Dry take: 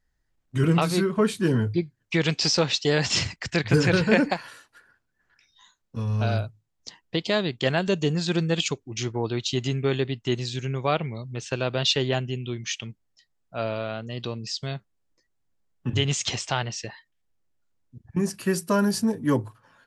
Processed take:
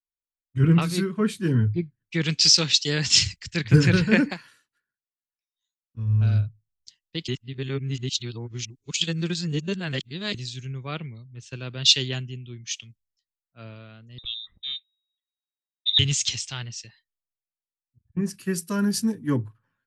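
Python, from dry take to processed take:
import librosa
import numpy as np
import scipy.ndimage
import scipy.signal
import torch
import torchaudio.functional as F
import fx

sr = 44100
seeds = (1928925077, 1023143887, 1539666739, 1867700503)

y = fx.freq_invert(x, sr, carrier_hz=3800, at=(14.18, 15.99))
y = fx.edit(y, sr, fx.reverse_span(start_s=7.28, length_s=3.06), tone=tone)
y = fx.peak_eq(y, sr, hz=700.0, db=-14.5, octaves=1.7)
y = fx.band_widen(y, sr, depth_pct=100)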